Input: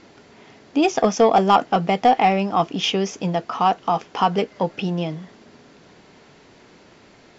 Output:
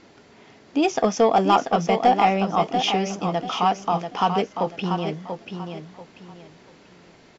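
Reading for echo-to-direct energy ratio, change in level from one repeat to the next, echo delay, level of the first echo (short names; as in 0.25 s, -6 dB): -6.5 dB, -11.5 dB, 0.688 s, -7.0 dB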